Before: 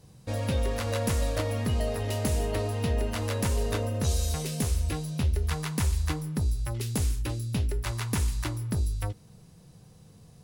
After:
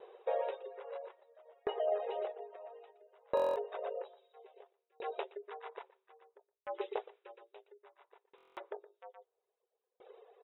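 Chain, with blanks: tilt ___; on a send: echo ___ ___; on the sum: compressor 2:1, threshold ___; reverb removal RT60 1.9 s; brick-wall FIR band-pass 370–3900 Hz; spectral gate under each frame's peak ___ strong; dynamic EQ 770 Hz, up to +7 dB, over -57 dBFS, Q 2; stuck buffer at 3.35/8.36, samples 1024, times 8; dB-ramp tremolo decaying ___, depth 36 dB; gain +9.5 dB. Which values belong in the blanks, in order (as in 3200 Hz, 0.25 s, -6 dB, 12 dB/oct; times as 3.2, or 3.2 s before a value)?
-4.5 dB/oct, 0.119 s, -3.5 dB, -24 dBFS, -40 dB, 0.6 Hz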